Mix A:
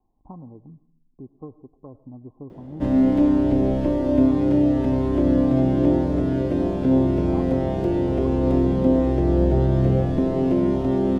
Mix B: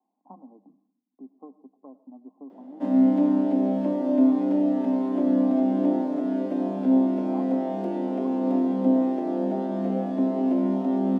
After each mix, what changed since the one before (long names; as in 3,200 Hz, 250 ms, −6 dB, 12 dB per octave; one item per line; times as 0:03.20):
master: add Chebyshev high-pass with heavy ripple 190 Hz, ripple 9 dB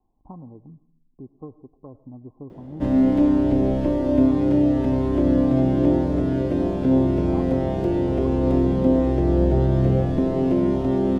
master: remove Chebyshev high-pass with heavy ripple 190 Hz, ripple 9 dB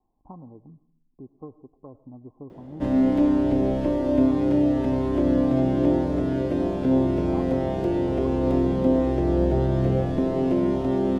master: add low-shelf EQ 260 Hz −5 dB